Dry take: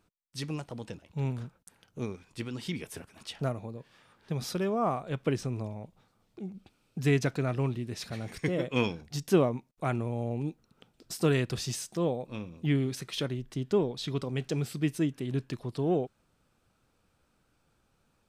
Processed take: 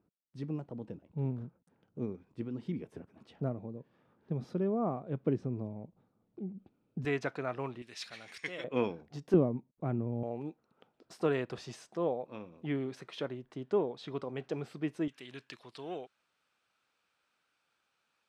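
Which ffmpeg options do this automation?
ffmpeg -i in.wav -af "asetnsamples=nb_out_samples=441:pad=0,asendcmd='7.05 bandpass f 1000;7.82 bandpass f 2800;8.64 bandpass f 540;9.34 bandpass f 220;10.23 bandpass f 750;15.08 bandpass f 2500',bandpass=frequency=260:width_type=q:width=0.74:csg=0" out.wav

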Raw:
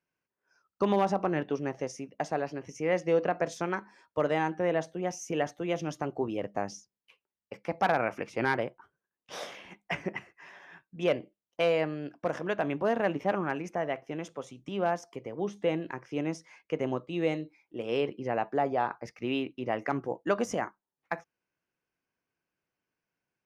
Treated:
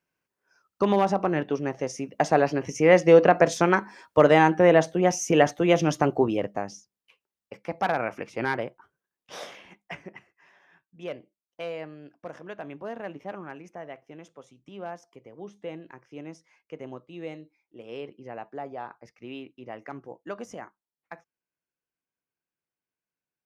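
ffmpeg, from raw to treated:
ffmpeg -i in.wav -af "volume=11dB,afade=type=in:start_time=1.81:duration=0.58:silence=0.446684,afade=type=out:start_time=6.07:duration=0.56:silence=0.298538,afade=type=out:start_time=9.49:duration=0.58:silence=0.354813" out.wav

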